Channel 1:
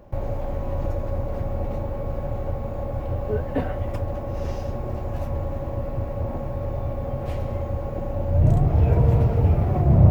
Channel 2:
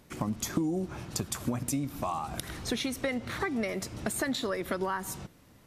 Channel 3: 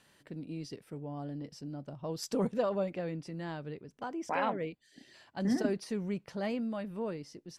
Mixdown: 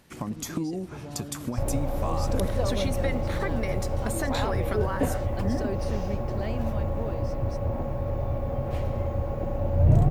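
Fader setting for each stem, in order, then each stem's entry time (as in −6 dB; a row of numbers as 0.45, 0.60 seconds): −1.0, −1.0, −0.5 decibels; 1.45, 0.00, 0.00 seconds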